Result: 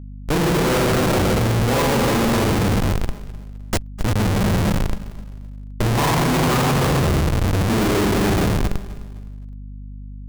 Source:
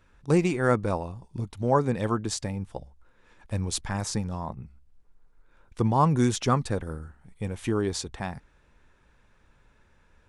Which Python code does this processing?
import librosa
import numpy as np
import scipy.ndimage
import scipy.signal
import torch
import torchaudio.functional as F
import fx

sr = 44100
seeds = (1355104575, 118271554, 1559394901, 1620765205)

y = fx.pre_emphasis(x, sr, coefficient=0.97, at=(2.62, 3.99), fade=0.02)
y = fx.rev_spring(y, sr, rt60_s=2.6, pass_ms=(39, 43, 52), chirp_ms=60, drr_db=-8.0)
y = fx.schmitt(y, sr, flips_db=-24.0)
y = fx.echo_filtered(y, sr, ms=253, feedback_pct=25, hz=2000.0, wet_db=-23)
y = fx.add_hum(y, sr, base_hz=50, snr_db=15)
y = fx.echo_feedback(y, sr, ms=258, feedback_pct=37, wet_db=-17.5)
y = y * 10.0 ** (3.0 / 20.0)